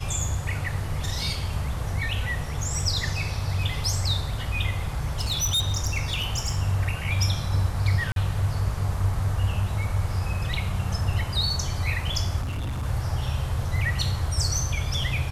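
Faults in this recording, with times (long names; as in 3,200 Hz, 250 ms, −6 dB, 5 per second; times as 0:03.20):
0:04.88–0:06.59: clipping −20.5 dBFS
0:08.12–0:08.16: drop-out 42 ms
0:12.41–0:12.83: clipping −26.5 dBFS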